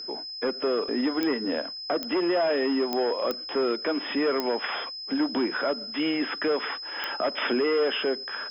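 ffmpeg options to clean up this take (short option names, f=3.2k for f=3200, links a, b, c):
-af "adeclick=t=4,bandreject=f=5.1k:w=30,agate=range=-21dB:threshold=-30dB"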